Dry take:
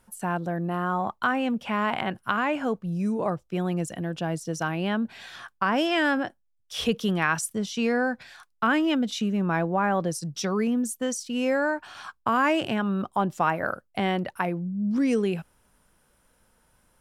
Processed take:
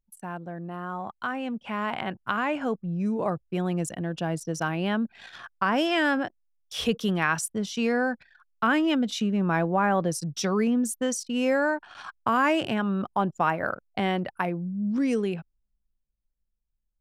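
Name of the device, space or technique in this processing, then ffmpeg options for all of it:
voice memo with heavy noise removal: -filter_complex "[0:a]asettb=1/sr,asplit=3[s0][s1][s2];[s0]atrim=end=3.474[s3];[s1]atrim=start=3.47:end=4.13,asetpts=PTS-STARTPTS,afade=t=in:d=0.004:c=qsin,afade=t=out:st=0.656:d=0.004:c=qsin,equalizer=f=8600:w=0.59:g=3[s4];[s2]atrim=start=4.126[s5];[s3][s4]acrossfade=d=0.004:c1=hsin:c2=qsin[s6];[s6][s5]acrossfade=d=0.004:c1=qsin:c2=hsin,anlmdn=0.158,dynaudnorm=f=350:g=11:m=3.76,volume=0.398"

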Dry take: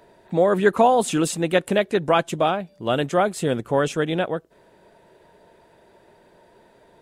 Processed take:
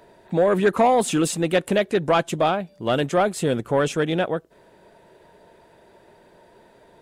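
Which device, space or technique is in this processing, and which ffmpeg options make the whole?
saturation between pre-emphasis and de-emphasis: -af "highshelf=f=4900:g=10.5,asoftclip=type=tanh:threshold=0.266,highshelf=f=4900:g=-10.5,volume=1.19"

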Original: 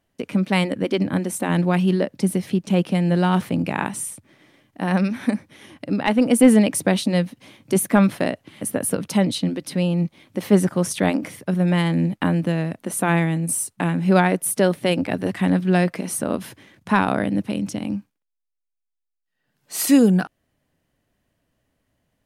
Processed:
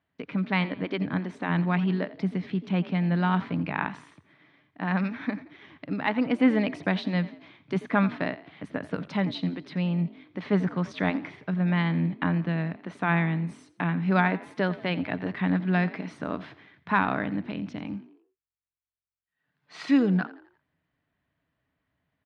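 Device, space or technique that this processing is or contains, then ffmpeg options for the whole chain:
frequency-shifting delay pedal into a guitar cabinet: -filter_complex "[0:a]asplit=5[s0][s1][s2][s3][s4];[s1]adelay=86,afreqshift=44,volume=0.133[s5];[s2]adelay=172,afreqshift=88,volume=0.0575[s6];[s3]adelay=258,afreqshift=132,volume=0.0245[s7];[s4]adelay=344,afreqshift=176,volume=0.0106[s8];[s0][s5][s6][s7][s8]amix=inputs=5:normalize=0,highpass=83,equalizer=f=110:t=q:w=4:g=-7,equalizer=f=220:t=q:w=4:g=-9,equalizer=f=360:t=q:w=4:g=-8,equalizer=f=530:t=q:w=4:g=-10,equalizer=f=770:t=q:w=4:g=-4,equalizer=f=2900:t=q:w=4:g=-6,lowpass=f=3500:w=0.5412,lowpass=f=3500:w=1.3066,volume=0.794"

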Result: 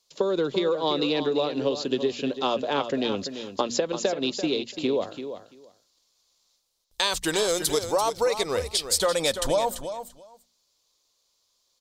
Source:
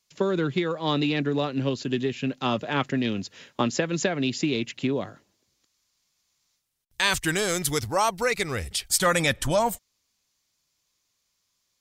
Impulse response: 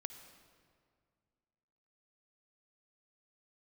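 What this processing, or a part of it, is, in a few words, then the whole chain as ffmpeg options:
ASMR close-microphone chain: -filter_complex "[0:a]bandreject=f=60:t=h:w=6,bandreject=f=120:t=h:w=6,bandreject=f=180:t=h:w=6,bandreject=f=240:t=h:w=6,asettb=1/sr,asplit=3[s0][s1][s2];[s0]atrim=end=3.924[s3];[s1]atrim=start=3.92:end=4.74,asetpts=PTS-STARTPTS,afade=t=in:d=0.004:c=qsin,afade=t=out:st=0.816:d=0.004:c=qsin,agate=range=0.501:threshold=0.0562:ratio=16:detection=peak[s4];[s2]atrim=start=4.736[s5];[s3][s4]acrossfade=d=0.004:c1=hsin:c2=qsin[s6];[s6][s5]acrossfade=d=0.004:c1=qsin:c2=hsin,equalizer=f=125:t=o:w=1:g=-10,equalizer=f=500:t=o:w=1:g=11,equalizer=f=1000:t=o:w=1:g=6,equalizer=f=2000:t=o:w=1:g=-5,equalizer=f=4000:t=o:w=1:g=10,equalizer=f=8000:t=o:w=1:g=3,lowshelf=f=150:g=6,acompressor=threshold=0.141:ratio=6,highshelf=f=11000:g=4,aecho=1:1:339|678:0.316|0.0474,volume=0.668"

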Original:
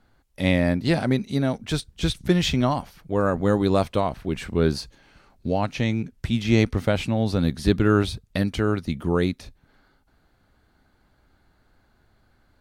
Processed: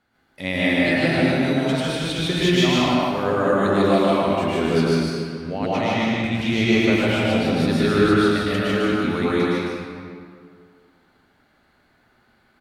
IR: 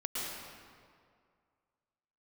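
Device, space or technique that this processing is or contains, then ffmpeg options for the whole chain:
stadium PA: -filter_complex "[0:a]highpass=f=180:p=1,equalizer=f=2200:t=o:w=1.2:g=5,aecho=1:1:151.6|212.8:0.891|0.251[s0];[1:a]atrim=start_sample=2205[s1];[s0][s1]afir=irnorm=-1:irlink=0,volume=0.75"

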